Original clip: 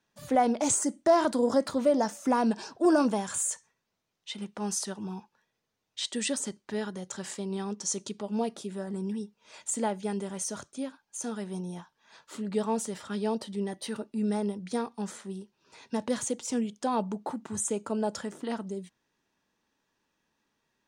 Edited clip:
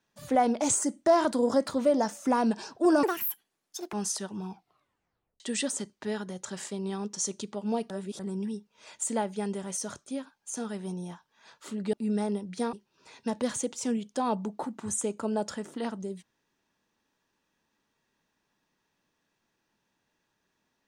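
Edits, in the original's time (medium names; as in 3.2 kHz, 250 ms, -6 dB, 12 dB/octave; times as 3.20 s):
3.03–4.60 s: speed 174%
5.17 s: tape stop 0.90 s
8.57–8.86 s: reverse
12.60–14.07 s: delete
14.87–15.40 s: delete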